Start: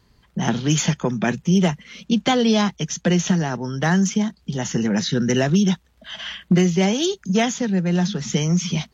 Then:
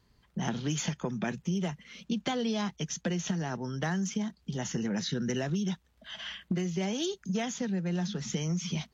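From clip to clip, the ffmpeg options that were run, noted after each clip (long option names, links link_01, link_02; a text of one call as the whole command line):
ffmpeg -i in.wav -af "acompressor=threshold=-19dB:ratio=6,volume=-8.5dB" out.wav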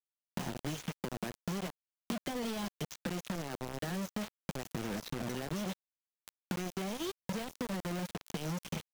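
ffmpeg -i in.wav -filter_complex "[0:a]acrusher=bits=4:mix=0:aa=0.000001,acrossover=split=610|3900[link_01][link_02][link_03];[link_01]acompressor=threshold=-38dB:ratio=4[link_04];[link_02]acompressor=threshold=-47dB:ratio=4[link_05];[link_03]acompressor=threshold=-51dB:ratio=4[link_06];[link_04][link_05][link_06]amix=inputs=3:normalize=0,aeval=exprs='sgn(val(0))*max(abs(val(0))-0.00178,0)':channel_layout=same,volume=2dB" out.wav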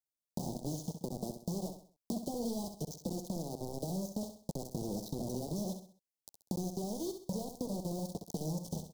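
ffmpeg -i in.wav -af "asuperstop=centerf=1900:order=8:qfactor=0.54,aecho=1:1:65|130|195|260:0.398|0.151|0.0575|0.0218" out.wav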